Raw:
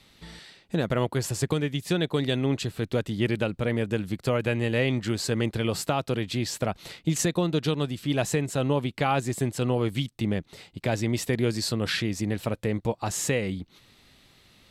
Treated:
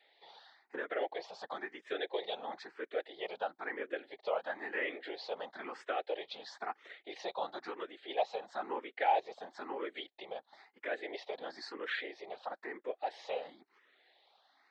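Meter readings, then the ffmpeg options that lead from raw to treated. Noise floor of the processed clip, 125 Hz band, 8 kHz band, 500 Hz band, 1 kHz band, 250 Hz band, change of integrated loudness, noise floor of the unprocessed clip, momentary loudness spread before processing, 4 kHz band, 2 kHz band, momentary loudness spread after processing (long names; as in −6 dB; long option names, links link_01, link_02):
−73 dBFS, below −40 dB, below −30 dB, −10.5 dB, −3.5 dB, −23.0 dB, −12.5 dB, −59 dBFS, 5 LU, −13.0 dB, −7.5 dB, 10 LU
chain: -filter_complex "[0:a]afftfilt=real='hypot(re,im)*cos(2*PI*random(0))':imag='hypot(re,im)*sin(2*PI*random(1))':win_size=512:overlap=0.75,highpass=frequency=430:width=0.5412,highpass=frequency=430:width=1.3066,equalizer=frequency=790:width_type=q:width=4:gain=9,equalizer=frequency=1800:width_type=q:width=4:gain=5,equalizer=frequency=2700:width_type=q:width=4:gain=-7,lowpass=frequency=3900:width=0.5412,lowpass=frequency=3900:width=1.3066,asplit=2[link_01][link_02];[link_02]afreqshift=1[link_03];[link_01][link_03]amix=inputs=2:normalize=1"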